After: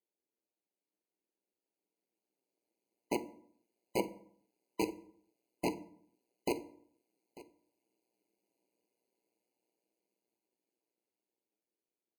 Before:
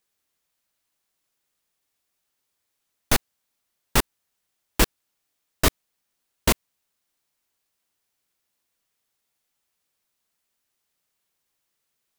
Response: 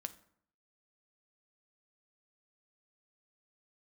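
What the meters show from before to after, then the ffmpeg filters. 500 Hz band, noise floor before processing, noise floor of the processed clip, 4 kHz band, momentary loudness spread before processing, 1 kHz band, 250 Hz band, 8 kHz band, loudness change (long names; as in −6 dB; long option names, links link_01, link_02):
−7.0 dB, −78 dBFS, below −85 dBFS, −20.5 dB, 3 LU, −12.0 dB, −8.0 dB, −22.0 dB, −14.5 dB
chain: -filter_complex "[0:a]bandpass=frequency=330:width_type=q:width=3.7:csg=0,dynaudnorm=framelen=420:gausssize=13:maxgain=12dB,asplit=2[link_01][link_02];[link_02]alimiter=limit=-17dB:level=0:latency=1,volume=3dB[link_03];[link_01][link_03]amix=inputs=2:normalize=0,asoftclip=type=tanh:threshold=-22dB,tremolo=f=120:d=0.919,aemphasis=mode=production:type=riaa,aecho=1:1:894:0.106[link_04];[1:a]atrim=start_sample=2205[link_05];[link_04][link_05]afir=irnorm=-1:irlink=0,afftfilt=real='re*eq(mod(floor(b*sr/1024/1000),2),0)':imag='im*eq(mod(floor(b*sr/1024/1000),2),0)':win_size=1024:overlap=0.75,volume=5dB"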